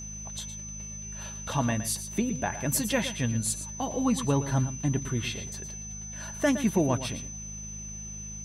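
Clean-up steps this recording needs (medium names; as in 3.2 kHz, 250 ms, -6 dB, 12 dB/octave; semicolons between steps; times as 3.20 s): de-hum 52.3 Hz, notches 4; band-stop 6.1 kHz, Q 30; inverse comb 115 ms -12 dB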